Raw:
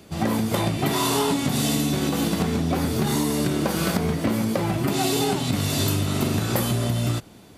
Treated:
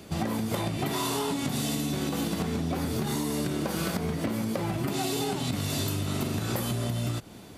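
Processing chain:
downward compressor 6 to 1, threshold −28 dBFS, peak gain reduction 10.5 dB
level +1.5 dB

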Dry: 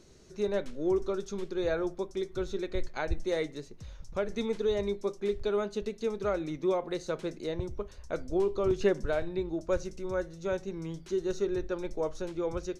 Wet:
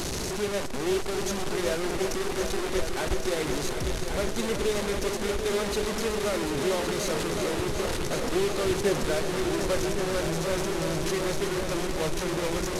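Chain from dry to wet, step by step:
linear delta modulator 64 kbit/s, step −25 dBFS
echo machine with several playback heads 372 ms, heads all three, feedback 68%, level −11 dB

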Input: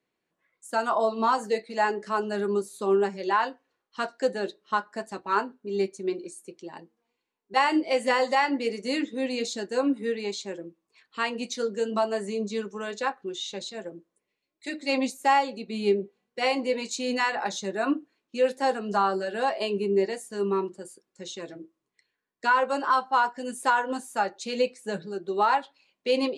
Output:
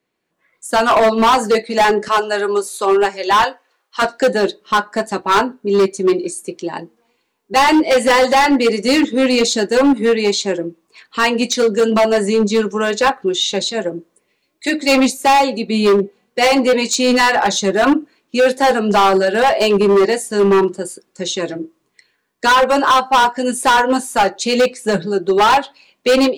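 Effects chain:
0:02.08–0:04.02: high-pass filter 580 Hz 12 dB per octave
automatic gain control gain up to 10.5 dB
hard clipping −15 dBFS, distortion −8 dB
level +6.5 dB

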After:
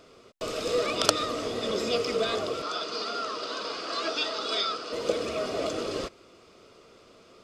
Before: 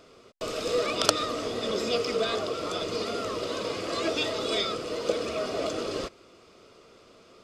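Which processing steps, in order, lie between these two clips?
0:02.62–0:04.93: loudspeaker in its box 340–8,000 Hz, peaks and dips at 360 Hz −5 dB, 530 Hz −7 dB, 1,400 Hz +6 dB, 2,100 Hz −5 dB, 4,700 Hz +5 dB, 7,300 Hz −6 dB

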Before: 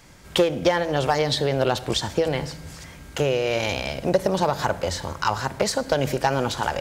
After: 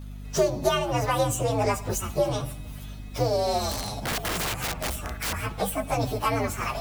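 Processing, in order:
partials spread apart or drawn together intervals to 125%
0:03.71–0:05.33: wrap-around overflow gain 23.5 dB
mains hum 50 Hz, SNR 11 dB

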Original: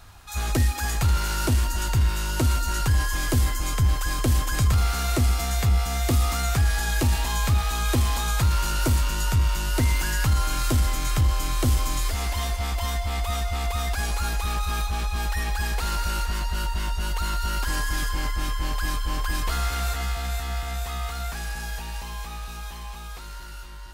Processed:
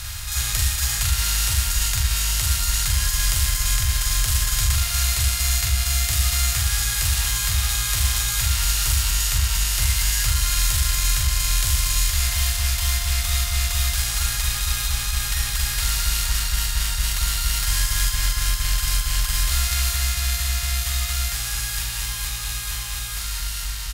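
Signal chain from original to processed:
compressor on every frequency bin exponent 0.4
parametric band 820 Hz −7 dB 2.9 octaves
double-tracking delay 43 ms −4 dB
harmonic generator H 5 −30 dB, 7 −27 dB, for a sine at −6.5 dBFS
guitar amp tone stack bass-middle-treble 10-0-10
hum removal 49.03 Hz, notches 20
level +4 dB

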